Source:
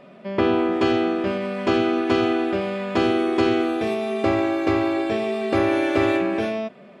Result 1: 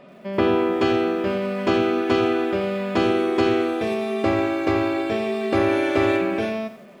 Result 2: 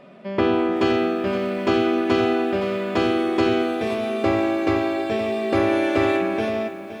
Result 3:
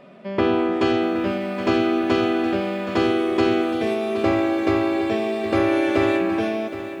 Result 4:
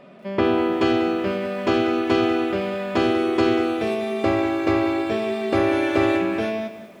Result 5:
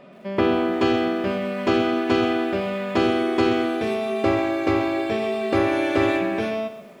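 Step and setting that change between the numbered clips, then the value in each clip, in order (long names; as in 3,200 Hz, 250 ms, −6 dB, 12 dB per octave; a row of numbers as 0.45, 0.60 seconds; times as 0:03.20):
feedback echo at a low word length, delay time: 87, 518, 769, 192, 129 milliseconds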